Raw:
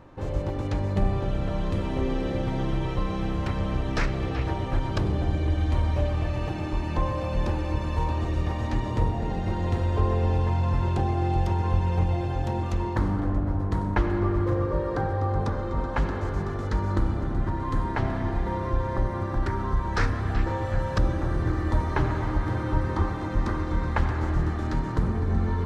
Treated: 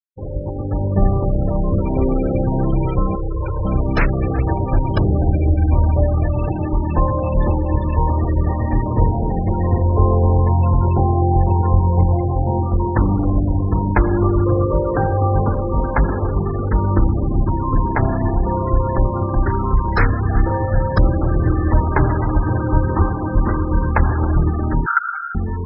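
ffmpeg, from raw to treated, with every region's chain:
-filter_complex "[0:a]asettb=1/sr,asplit=3[a][b][c];[a]atrim=end=3.154[d];[b]atrim=start=3.15:end=3.65,asetpts=PTS-STARTPTS,afade=t=in:d=0.004:c=qsin,afade=t=out:st=0.496:d=0.004:c=qsin,equalizer=f=180:t=o:w=0.36:g=-12,aeval=exprs='(tanh(28.2*val(0)+0.2)-tanh(0.2))/28.2':c=same,aecho=1:1:2.1:0.56,atrim=end_sample=22050[e];[c]atrim=start=3.646[f];[d][e]acrossfade=d=0.004:c1=hsin:c2=qsin[g];[g][f]acrossfade=d=0.004:c1=qsin:c2=hsin,asettb=1/sr,asplit=3[h][i][j];[h]atrim=end=24.864[k];[i]atrim=start=24.86:end=25.35,asetpts=PTS-STARTPTS,afade=t=in:d=0.004:c=qsin,afade=t=out:st=0.486:d=0.004:c=qsin,aecho=1:1:1.4:0.66,atrim=end_sample=21609,acompressor=threshold=-21dB:ratio=10:attack=3.2:release=140:knee=1:detection=peak,highpass=f=1.4k:t=q:w=14[l];[j]atrim=start=25.346[m];[k][l]acrossfade=d=0.004:c1=hsin:c2=qsin[n];[n][m]acrossfade=d=0.004:c1=qsin:c2=hsin,afftfilt=real='re*gte(hypot(re,im),0.0398)':imag='im*gte(hypot(re,im),0.0398)':win_size=1024:overlap=0.75,dynaudnorm=f=140:g=11:m=7dB,volume=2.5dB"

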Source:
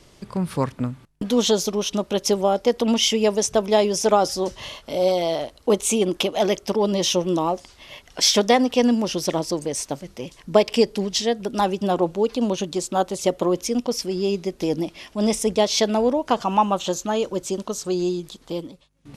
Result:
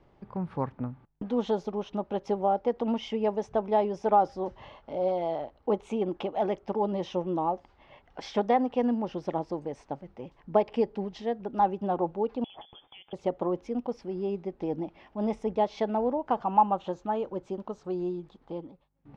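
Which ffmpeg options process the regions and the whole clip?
-filter_complex "[0:a]asettb=1/sr,asplit=3[a][b][c];[a]atrim=end=12.444[d];[b]atrim=start=12.44:end=13.13,asetpts=PTS-STARTPTS,afade=t=in:d=0.004:c=qsin,afade=t=out:st=0.686:d=0.004:c=qsin,lowpass=f=3.1k:t=q:w=0.5098,lowpass=f=3.1k:t=q:w=0.6013,lowpass=f=3.1k:t=q:w=0.9,lowpass=f=3.1k:t=q:w=2.563,afreqshift=-3600,acompressor=threshold=-27dB:ratio=8:attack=3.2:release=140:knee=1:detection=peak[e];[c]atrim=start=13.126[f];[d][e]acrossfade=d=0.004:c1=hsin:c2=qsin[g];[g][f]acrossfade=d=0.004:c1=qsin:c2=hsin,lowpass=1.6k,equalizer=f=820:t=o:w=0.25:g=8.5,volume=-8.5dB"

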